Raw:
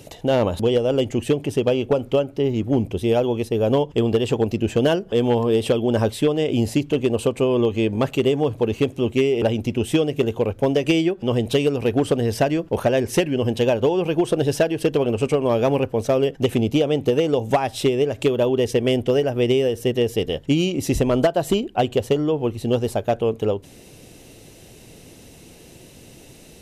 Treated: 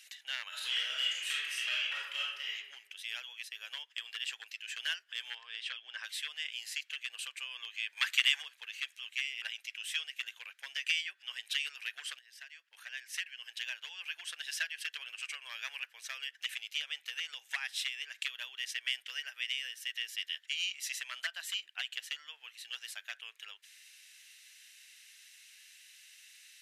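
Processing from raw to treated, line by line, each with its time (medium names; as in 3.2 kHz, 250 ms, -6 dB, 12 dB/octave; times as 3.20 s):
0.48–2.54 s: reverb throw, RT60 0.96 s, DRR -6.5 dB
5.35–6.04 s: distance through air 120 m
7.96–8.41 s: spectral peaks clipped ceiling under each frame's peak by 20 dB
12.19–14.18 s: fade in, from -20 dB
whole clip: Chebyshev high-pass 1.7 kHz, order 4; tilt EQ -2.5 dB/octave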